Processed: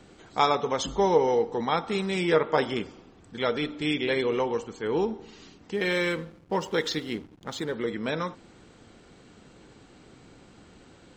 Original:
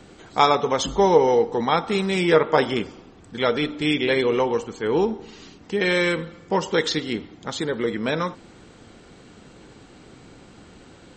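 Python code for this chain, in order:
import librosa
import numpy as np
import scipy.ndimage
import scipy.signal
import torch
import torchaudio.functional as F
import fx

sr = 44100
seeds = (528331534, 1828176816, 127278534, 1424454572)

y = fx.backlash(x, sr, play_db=-39.0, at=(5.74, 7.74))
y = F.gain(torch.from_numpy(y), -5.5).numpy()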